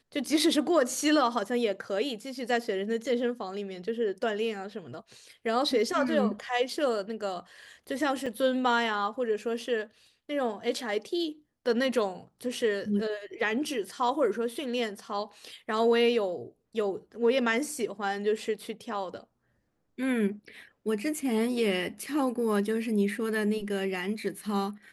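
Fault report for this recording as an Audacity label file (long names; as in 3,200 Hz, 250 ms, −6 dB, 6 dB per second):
8.260000	8.270000	drop-out 5.5 ms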